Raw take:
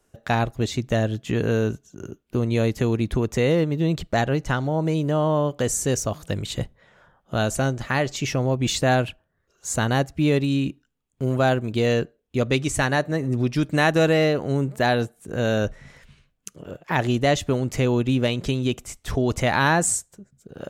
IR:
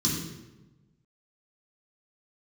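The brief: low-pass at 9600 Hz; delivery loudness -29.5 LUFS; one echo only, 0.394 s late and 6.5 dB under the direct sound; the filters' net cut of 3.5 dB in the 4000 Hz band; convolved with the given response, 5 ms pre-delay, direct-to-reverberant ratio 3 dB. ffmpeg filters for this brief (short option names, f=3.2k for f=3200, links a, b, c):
-filter_complex "[0:a]lowpass=9.6k,equalizer=f=4k:t=o:g=-4.5,aecho=1:1:394:0.473,asplit=2[a][b];[1:a]atrim=start_sample=2205,adelay=5[c];[b][c]afir=irnorm=-1:irlink=0,volume=-10.5dB[d];[a][d]amix=inputs=2:normalize=0,volume=-17dB"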